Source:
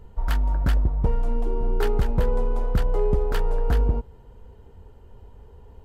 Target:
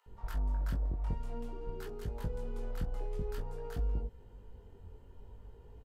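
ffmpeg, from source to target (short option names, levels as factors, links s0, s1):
-filter_complex "[0:a]acrossover=split=860[s0][s1];[s0]adelay=60[s2];[s2][s1]amix=inputs=2:normalize=0,acrossover=split=340|1500|4100[s3][s4][s5][s6];[s3]acompressor=threshold=0.0398:ratio=4[s7];[s4]acompressor=threshold=0.00708:ratio=4[s8];[s5]acompressor=threshold=0.00158:ratio=4[s9];[s6]acompressor=threshold=0.00282:ratio=4[s10];[s7][s8][s9][s10]amix=inputs=4:normalize=0,flanger=delay=18.5:depth=4.4:speed=0.51,volume=0.708"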